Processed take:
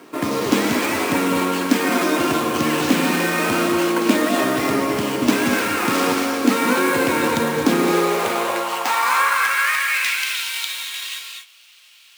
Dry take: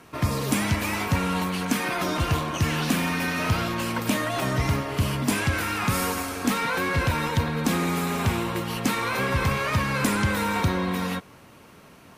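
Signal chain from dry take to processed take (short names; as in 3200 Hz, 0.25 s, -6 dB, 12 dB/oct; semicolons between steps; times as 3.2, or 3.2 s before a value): sample-rate reducer 11000 Hz, jitter 20%; non-linear reverb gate 0.27 s rising, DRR 3 dB; high-pass sweep 300 Hz -> 3200 Hz, 7.74–10.47; gain +4 dB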